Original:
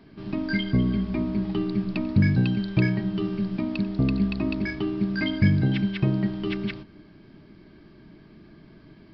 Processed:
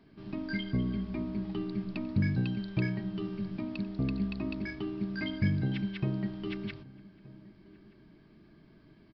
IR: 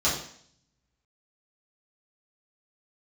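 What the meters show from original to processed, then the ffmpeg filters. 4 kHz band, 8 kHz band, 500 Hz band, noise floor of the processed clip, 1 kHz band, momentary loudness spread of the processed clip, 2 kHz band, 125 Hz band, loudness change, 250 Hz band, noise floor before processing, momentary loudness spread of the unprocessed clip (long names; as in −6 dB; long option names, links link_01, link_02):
−8.5 dB, can't be measured, −8.5 dB, −59 dBFS, −8.5 dB, 11 LU, −8.5 dB, −8.5 dB, −8.5 dB, −8.5 dB, −51 dBFS, 7 LU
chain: -filter_complex "[0:a]asplit=2[link_01][link_02];[link_02]adelay=1224,volume=-21dB,highshelf=frequency=4000:gain=-27.6[link_03];[link_01][link_03]amix=inputs=2:normalize=0,volume=-8.5dB"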